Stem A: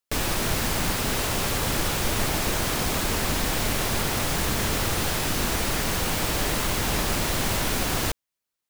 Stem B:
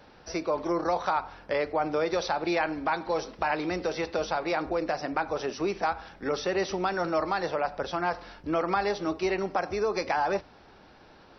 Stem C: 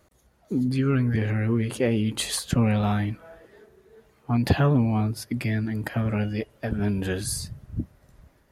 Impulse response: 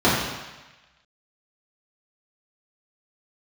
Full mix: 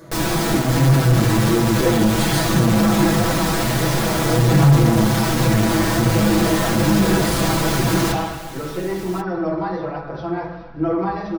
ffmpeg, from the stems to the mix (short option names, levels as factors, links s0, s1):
-filter_complex "[0:a]volume=1.41,asplit=3[s0][s1][s2];[s1]volume=0.119[s3];[s2]volume=0.211[s4];[1:a]aemphasis=mode=reproduction:type=bsi,adelay=2300,volume=0.75,asplit=2[s5][s6];[s6]volume=0.1[s7];[2:a]acompressor=mode=upward:threshold=0.0126:ratio=2.5,volume=0.668,asplit=2[s8][s9];[s9]volume=0.299[s10];[3:a]atrim=start_sample=2205[s11];[s3][s7][s10]amix=inputs=3:normalize=0[s12];[s12][s11]afir=irnorm=-1:irlink=0[s13];[s4]aecho=0:1:1090:1[s14];[s0][s5][s8][s13][s14]amix=inputs=5:normalize=0,flanger=delay=5.9:depth=6.7:regen=71:speed=1.3:shape=triangular,asoftclip=type=tanh:threshold=0.237,aecho=1:1:6.1:0.93"